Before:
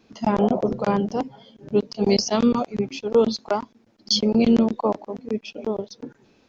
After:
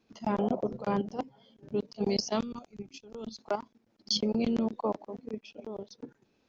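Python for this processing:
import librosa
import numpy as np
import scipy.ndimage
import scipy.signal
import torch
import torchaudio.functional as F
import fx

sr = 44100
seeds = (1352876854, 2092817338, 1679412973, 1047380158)

y = fx.level_steps(x, sr, step_db=11)
y = fx.graphic_eq(y, sr, hz=(125, 250, 500, 1000, 2000, 4000), db=(-7, -6, -11, -8, -8, -5), at=(2.42, 3.38))
y = F.gain(torch.from_numpy(y), -5.5).numpy()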